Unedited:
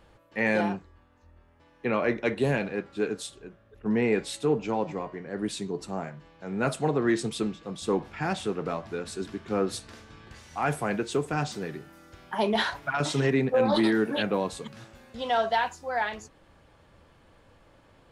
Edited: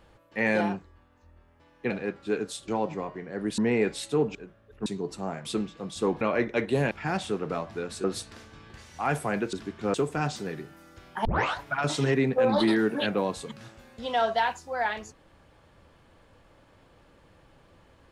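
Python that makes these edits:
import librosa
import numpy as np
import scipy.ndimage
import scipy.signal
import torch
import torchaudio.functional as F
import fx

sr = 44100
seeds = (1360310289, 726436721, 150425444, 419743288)

y = fx.edit(x, sr, fx.move(start_s=1.9, length_s=0.7, to_s=8.07),
    fx.swap(start_s=3.38, length_s=0.51, other_s=4.66, other_length_s=0.9),
    fx.cut(start_s=6.15, length_s=1.16),
    fx.move(start_s=9.2, length_s=0.41, to_s=11.1),
    fx.tape_start(start_s=12.41, length_s=0.31), tone=tone)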